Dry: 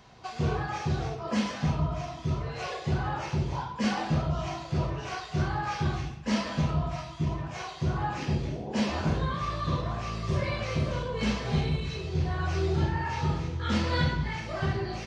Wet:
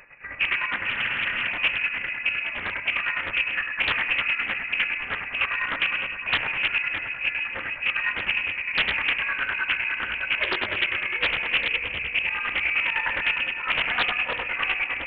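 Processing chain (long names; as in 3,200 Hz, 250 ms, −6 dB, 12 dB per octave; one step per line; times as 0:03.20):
high-pass filter 130 Hz 24 dB per octave
wave folding −23 dBFS
square-wave tremolo 9.8 Hz, depth 60%, duty 45%
delay that swaps between a low-pass and a high-pass 152 ms, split 800 Hz, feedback 81%, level −8 dB
on a send at −20 dB: convolution reverb RT60 3.2 s, pre-delay 3 ms
on the sum: voice inversion scrambler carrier 2,700 Hz
frozen spectrum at 0:00.86, 0.61 s
highs frequency-modulated by the lows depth 0.69 ms
level +7.5 dB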